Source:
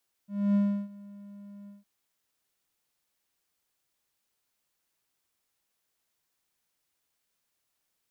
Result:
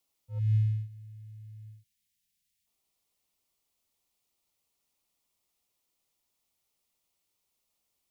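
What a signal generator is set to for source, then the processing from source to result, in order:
ADSR triangle 202 Hz, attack 0.267 s, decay 0.333 s, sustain -23.5 dB, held 1.40 s, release 0.16 s -18 dBFS
frequency shift -94 Hz; bell 1600 Hz -13 dB 0.38 oct; spectral delete 0.39–2.67, 250–1500 Hz

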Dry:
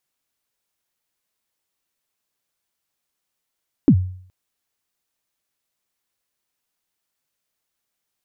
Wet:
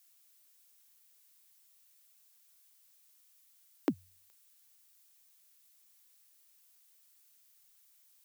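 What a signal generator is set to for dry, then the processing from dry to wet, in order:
kick drum length 0.42 s, from 330 Hz, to 92 Hz, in 71 ms, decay 0.56 s, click off, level -5.5 dB
HPF 430 Hz 12 dB/oct; tilt +4 dB/oct

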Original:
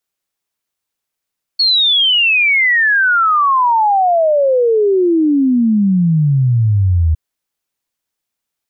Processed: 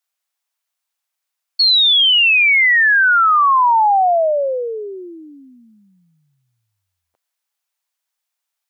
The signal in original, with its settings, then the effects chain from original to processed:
log sweep 4400 Hz -> 77 Hz 5.56 s -9 dBFS
HPF 630 Hz 24 dB/oct

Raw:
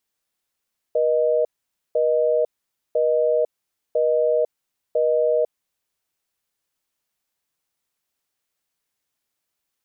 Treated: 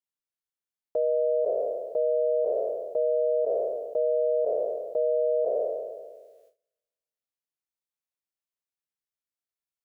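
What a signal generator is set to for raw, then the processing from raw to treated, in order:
call progress tone busy tone, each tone -19 dBFS 4.95 s
spectral trails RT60 1.56 s; gate with hold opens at -48 dBFS; limiter -18.5 dBFS

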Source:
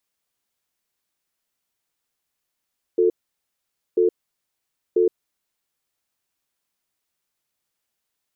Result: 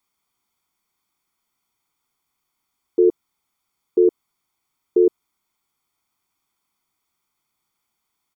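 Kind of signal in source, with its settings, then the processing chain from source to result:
cadence 359 Hz, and 443 Hz, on 0.12 s, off 0.87 s, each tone -17 dBFS 2.64 s
bell 610 Hz +7 dB 2.7 oct; comb 0.9 ms, depth 72%

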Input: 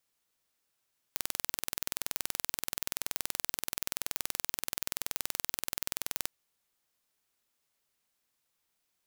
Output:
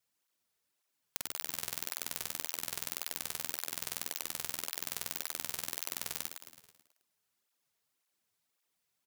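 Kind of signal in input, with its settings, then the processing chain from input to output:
pulse train 21/s, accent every 0, -4.5 dBFS 5.14 s
frequency-shifting echo 0.108 s, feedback 55%, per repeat -110 Hz, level -8 dB; tape flanging out of phase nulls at 1.8 Hz, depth 3.9 ms

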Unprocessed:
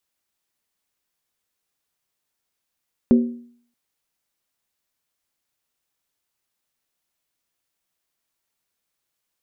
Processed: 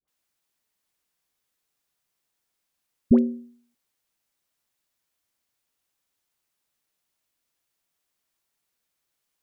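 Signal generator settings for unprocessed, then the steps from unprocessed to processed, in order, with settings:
skin hit, lowest mode 239 Hz, decay 0.56 s, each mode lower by 9 dB, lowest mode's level -8 dB
dispersion highs, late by 80 ms, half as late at 840 Hz

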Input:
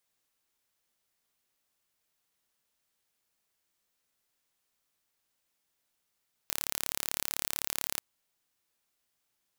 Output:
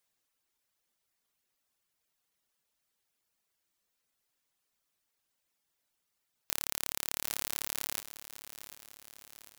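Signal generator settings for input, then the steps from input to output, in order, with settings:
pulse train 35.8/s, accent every 0, -4.5 dBFS 1.49 s
reverb removal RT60 0.77 s; lo-fi delay 0.746 s, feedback 55%, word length 7-bit, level -13 dB

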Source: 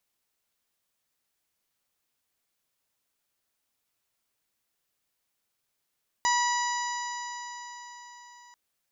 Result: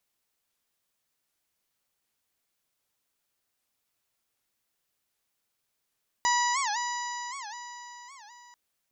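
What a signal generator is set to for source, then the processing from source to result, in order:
stretched partials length 2.29 s, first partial 968 Hz, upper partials -5/-16/-13.5/-10.5/-10.5/-8.5 dB, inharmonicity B 0.0014, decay 4.58 s, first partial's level -23 dB
record warp 78 rpm, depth 250 cents

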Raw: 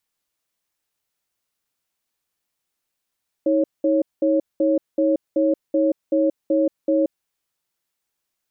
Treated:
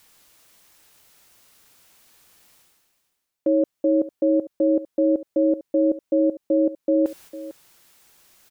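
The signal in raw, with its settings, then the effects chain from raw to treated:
cadence 317 Hz, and 551 Hz, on 0.18 s, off 0.20 s, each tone -18 dBFS 3.69 s
reverse; upward compressor, threshold -25 dBFS; reverse; gate -45 dBFS, range -7 dB; echo 0.451 s -16 dB

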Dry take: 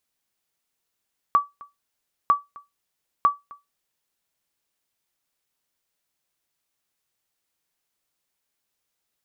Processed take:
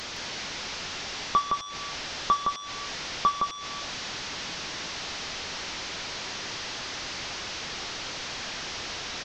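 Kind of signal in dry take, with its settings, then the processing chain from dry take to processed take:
sonar ping 1150 Hz, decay 0.19 s, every 0.95 s, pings 3, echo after 0.26 s, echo -24.5 dB -9 dBFS
delta modulation 32 kbps, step -30 dBFS; on a send: echo 0.164 s -3.5 dB

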